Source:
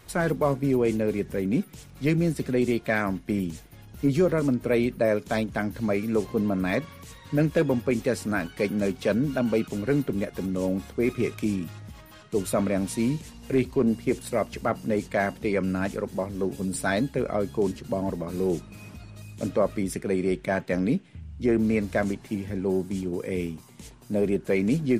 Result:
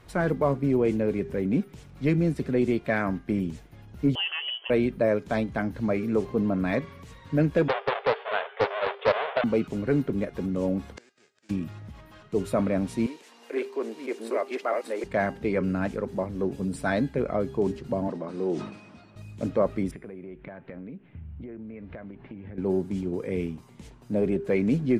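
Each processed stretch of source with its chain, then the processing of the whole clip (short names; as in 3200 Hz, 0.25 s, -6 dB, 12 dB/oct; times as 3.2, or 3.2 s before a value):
4.15–4.7 inverted band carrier 3200 Hz + brick-wall FIR high-pass 330 Hz + tilt shelf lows +7 dB, about 1100 Hz
7.68–9.44 half-waves squared off + brick-wall FIR band-pass 400–3700 Hz + Doppler distortion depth 0.26 ms
10.96–11.49 spectral whitening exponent 0.3 + flipped gate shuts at -23 dBFS, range -34 dB + speaker cabinet 220–8100 Hz, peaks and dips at 510 Hz +6 dB, 760 Hz -4 dB, 1100 Hz -6 dB, 1600 Hz +7 dB, 4900 Hz +5 dB, 7300 Hz +7 dB
13.06–15.04 reverse delay 0.503 s, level -1 dB + Bessel high-pass 510 Hz, order 6 + upward compressor, threshold -42 dBFS
18.08–19.16 speaker cabinet 240–8400 Hz, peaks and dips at 450 Hz -3 dB, 2300 Hz -3 dB, 7000 Hz -6 dB + sustainer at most 77 dB/s
19.91–22.58 LPF 2900 Hz 24 dB/oct + compressor 16:1, threshold -36 dBFS
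whole clip: LPF 2300 Hz 6 dB/oct; de-hum 400.1 Hz, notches 40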